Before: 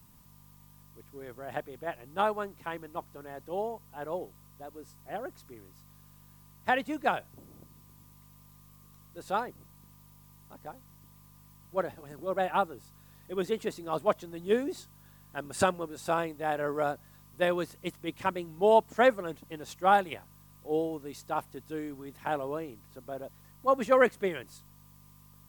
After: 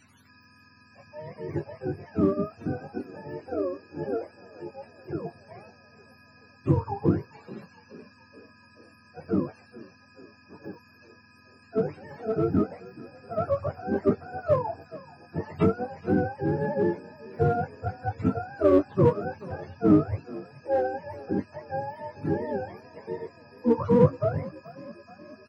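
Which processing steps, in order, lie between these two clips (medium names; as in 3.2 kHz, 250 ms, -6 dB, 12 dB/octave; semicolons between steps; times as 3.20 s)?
spectrum inverted on a logarithmic axis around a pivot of 500 Hz; in parallel at -8 dB: hard clipper -26 dBFS, distortion -7 dB; on the sum: doubling 20 ms -9.5 dB; frequency-shifting echo 428 ms, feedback 59%, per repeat +37 Hz, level -20 dB; trim +2.5 dB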